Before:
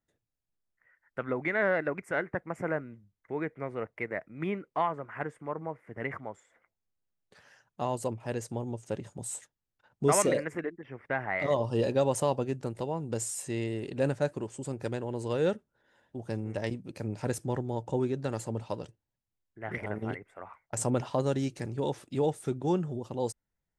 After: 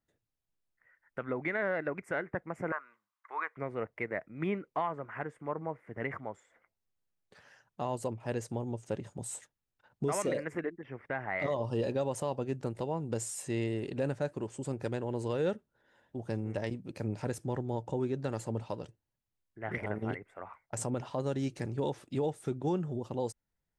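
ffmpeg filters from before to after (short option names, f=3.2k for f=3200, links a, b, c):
-filter_complex "[0:a]asettb=1/sr,asplit=3[a][b][c];[a]atrim=end=2.724[d];[b]atrim=start=2.72:end=3.57,asetpts=PTS-STARTPTS,afade=t=in:d=0.004:c=qsin,afade=t=out:st=0.846:d=0.004:c=qsin,highpass=f=1.1k:t=q:w=5.7[e];[c]atrim=start=3.566[f];[d][e]acrossfade=d=0.004:c1=hsin:c2=qsin[g];[g][f]acrossfade=d=0.004:c1=qsin:c2=hsin,highshelf=f=5.2k:g=-4.5,alimiter=limit=-22dB:level=0:latency=1:release=259"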